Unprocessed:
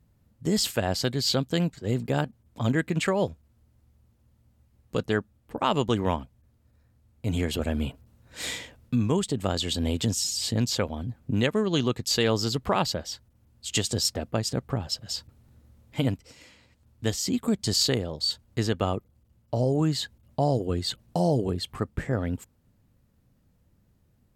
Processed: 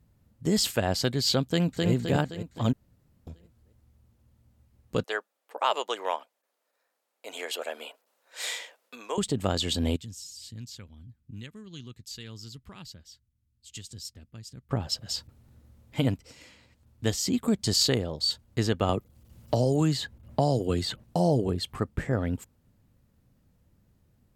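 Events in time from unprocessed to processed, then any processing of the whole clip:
1.42–1.9 echo throw 0.26 s, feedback 50%, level -2 dB
2.73–3.27 room tone
5.04–9.18 HPF 510 Hz 24 dB/oct
9.96–14.71 passive tone stack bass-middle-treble 6-0-2
18.89–21.04 three-band squash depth 70%

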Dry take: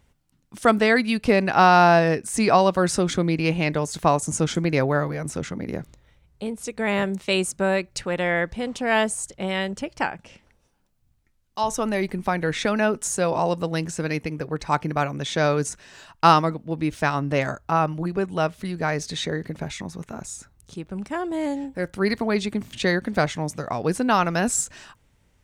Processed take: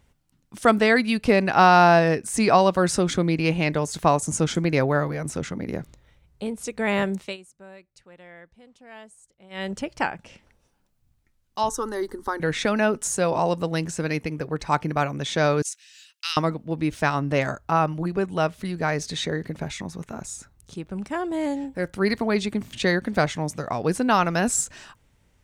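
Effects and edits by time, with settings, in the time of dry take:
7.16–9.71 dip -23.5 dB, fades 0.21 s
11.69–12.4 fixed phaser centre 660 Hz, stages 6
15.62–16.37 inverse Chebyshev high-pass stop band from 400 Hz, stop band 80 dB

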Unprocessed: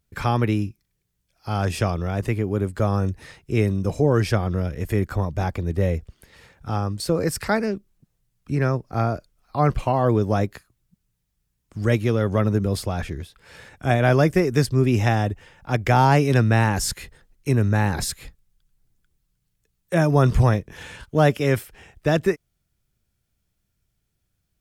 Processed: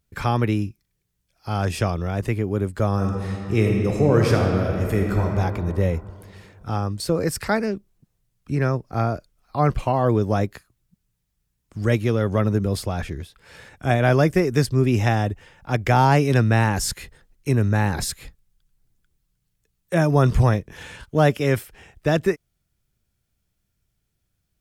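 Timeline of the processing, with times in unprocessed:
2.93–5.31 reverb throw, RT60 2.7 s, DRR 0.5 dB

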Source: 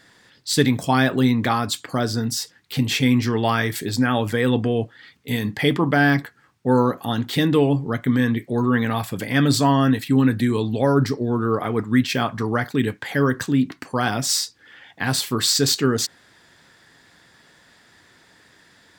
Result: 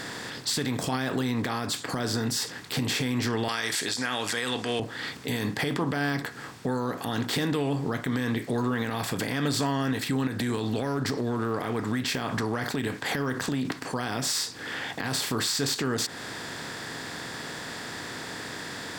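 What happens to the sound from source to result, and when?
3.48–4.8 weighting filter ITU-R 468
10.27–13.65 compressor, threshold -25 dBFS
whole clip: per-bin compression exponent 0.6; compressor 2.5:1, threshold -24 dBFS; limiter -15.5 dBFS; gain -2 dB

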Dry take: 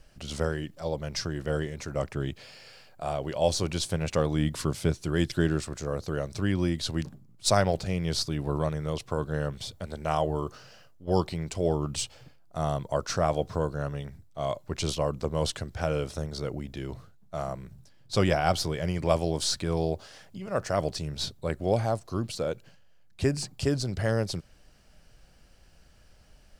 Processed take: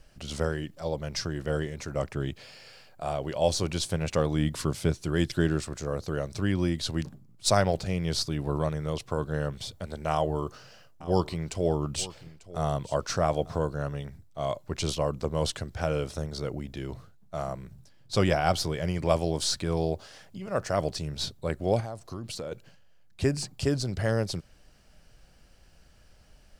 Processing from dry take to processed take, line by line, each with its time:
10.11–13.59 echo 0.894 s -17.5 dB
21.8–22.52 compressor, threshold -32 dBFS

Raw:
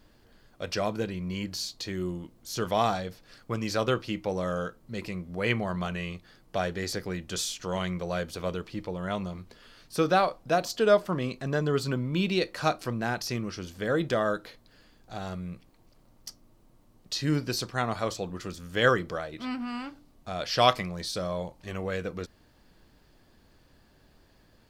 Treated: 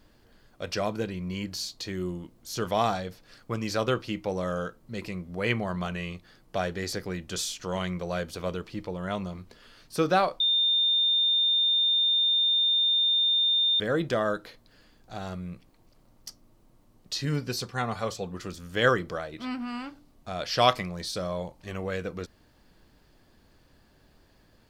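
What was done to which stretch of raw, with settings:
10.4–13.8 bleep 3620 Hz -20.5 dBFS
17.25–18.34 notch comb 320 Hz

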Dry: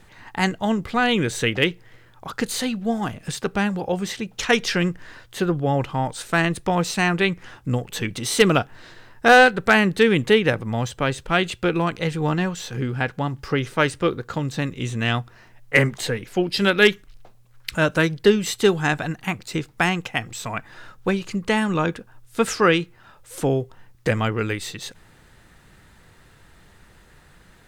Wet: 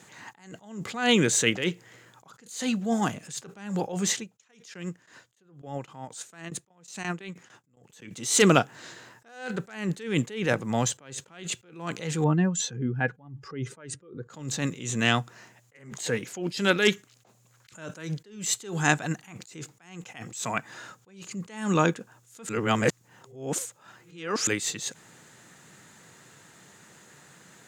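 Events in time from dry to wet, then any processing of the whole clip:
4.22–8.1 dB-ramp tremolo decaying 2.5 Hz -> 8.6 Hz, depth 19 dB
12.24–14.3 spectral contrast raised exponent 1.6
22.49–24.47 reverse
whole clip: HPF 130 Hz 24 dB/oct; bell 6900 Hz +13.5 dB 0.44 oct; attack slew limiter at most 110 dB/s

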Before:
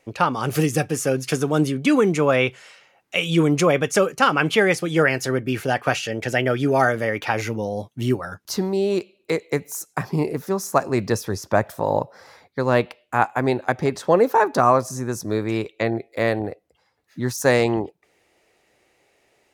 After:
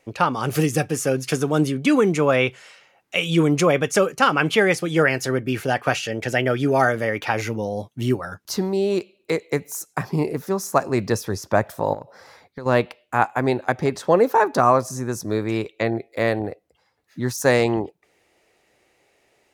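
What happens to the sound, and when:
11.93–12.66 compressor 10:1, threshold -29 dBFS

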